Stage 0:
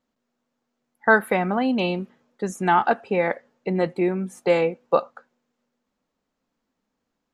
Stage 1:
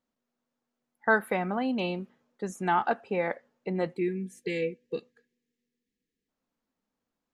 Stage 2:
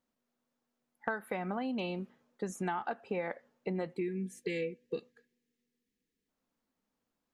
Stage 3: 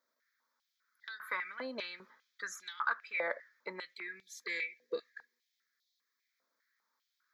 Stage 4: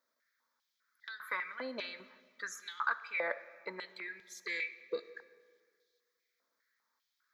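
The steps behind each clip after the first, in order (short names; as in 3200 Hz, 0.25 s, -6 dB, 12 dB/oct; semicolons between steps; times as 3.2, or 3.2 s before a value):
spectral gain 3.97–6.29, 510–1600 Hz -27 dB; gain -7 dB
compressor 16:1, threshold -31 dBFS, peak gain reduction 15 dB
in parallel at -12 dB: sine folder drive 6 dB, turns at -15.5 dBFS; on the sum: fixed phaser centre 2800 Hz, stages 6; stepped high-pass 5 Hz 680–3700 Hz; gain +1.5 dB
digital reverb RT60 1.8 s, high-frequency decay 0.75×, pre-delay 15 ms, DRR 15 dB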